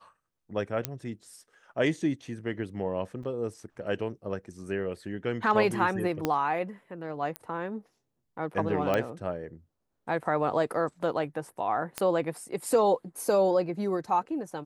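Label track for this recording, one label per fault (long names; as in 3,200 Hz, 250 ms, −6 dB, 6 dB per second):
0.850000	0.850000	click −11 dBFS
3.230000	3.240000	drop-out 5.2 ms
6.250000	6.250000	click −12 dBFS
7.360000	7.360000	click −18 dBFS
8.940000	8.940000	click −14 dBFS
11.980000	11.980000	click −13 dBFS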